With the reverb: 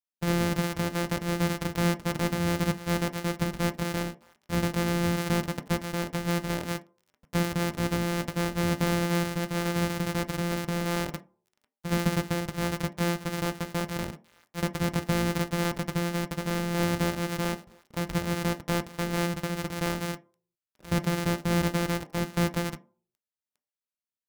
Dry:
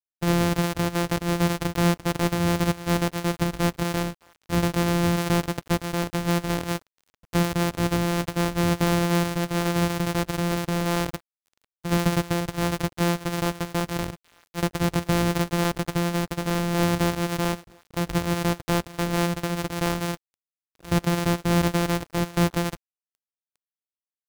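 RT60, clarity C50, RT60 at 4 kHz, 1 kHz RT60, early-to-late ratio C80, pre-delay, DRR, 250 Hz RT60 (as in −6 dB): 0.45 s, 18.0 dB, 0.15 s, 0.45 s, 22.0 dB, 3 ms, 7.0 dB, 0.40 s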